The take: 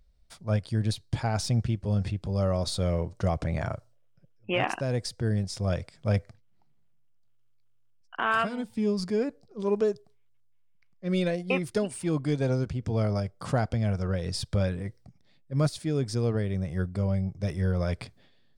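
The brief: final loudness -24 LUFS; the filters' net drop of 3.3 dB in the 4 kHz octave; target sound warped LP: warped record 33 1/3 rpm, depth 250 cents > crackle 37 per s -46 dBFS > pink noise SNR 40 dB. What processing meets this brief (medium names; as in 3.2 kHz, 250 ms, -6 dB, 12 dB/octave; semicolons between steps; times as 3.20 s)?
peaking EQ 4 kHz -4.5 dB; warped record 33 1/3 rpm, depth 250 cents; crackle 37 per s -46 dBFS; pink noise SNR 40 dB; trim +5.5 dB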